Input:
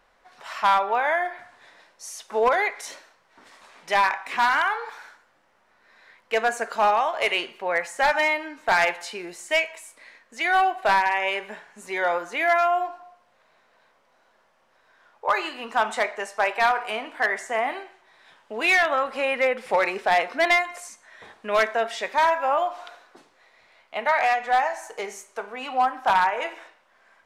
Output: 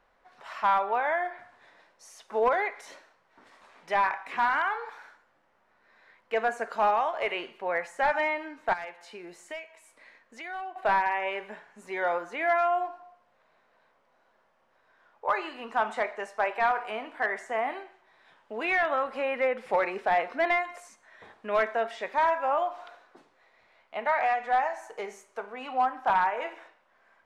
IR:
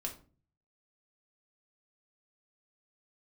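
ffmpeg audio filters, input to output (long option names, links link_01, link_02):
-filter_complex "[0:a]asettb=1/sr,asplit=3[link_01][link_02][link_03];[link_01]atrim=end=8.734[link_04];[link_02]atrim=start=8.73:end=10.76,asetpts=PTS-STARTPTS,afade=type=in:duration=0.004:curve=qsin,afade=type=out:start_time=2.026:duration=0.004:curve=qsin,acompressor=threshold=-37dB:ratio=2.5[link_05];[link_03]atrim=start=10.756[link_06];[link_04][link_05]acrossfade=duration=0.004:curve1=hsin:curve2=qsin[link_07];[link_07][link_06]acrossfade=duration=0.004:curve1=qsin:curve2=hsin,highshelf=frequency=3300:gain=-9.5,acrossover=split=2900[link_08][link_09];[link_09]acompressor=threshold=-43dB:ratio=4:attack=1:release=60[link_10];[link_08][link_10]amix=inputs=2:normalize=0,volume=-3.5dB"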